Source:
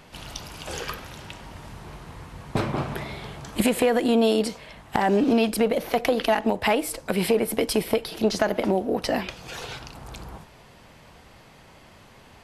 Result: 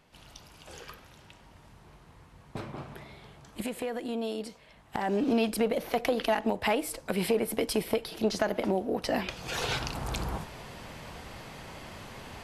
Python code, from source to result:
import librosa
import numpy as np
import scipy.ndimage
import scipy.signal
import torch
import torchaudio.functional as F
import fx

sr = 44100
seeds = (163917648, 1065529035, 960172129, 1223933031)

y = fx.gain(x, sr, db=fx.line((4.6, -13.5), (5.37, -5.5), (9.06, -5.5), (9.74, 6.0)))